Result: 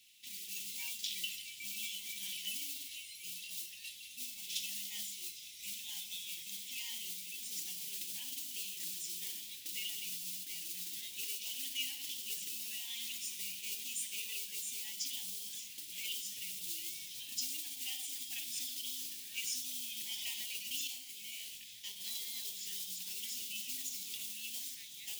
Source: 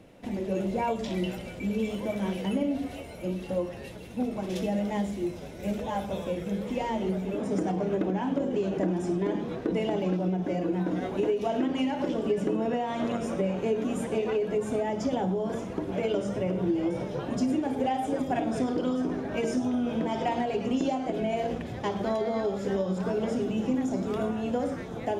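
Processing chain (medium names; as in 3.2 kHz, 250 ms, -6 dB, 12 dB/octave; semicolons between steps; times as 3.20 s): modulation noise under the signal 21 dB; inverse Chebyshev high-pass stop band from 1.5 kHz, stop band 40 dB; 20.87–22.00 s: detune thickener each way 50 cents; trim +6 dB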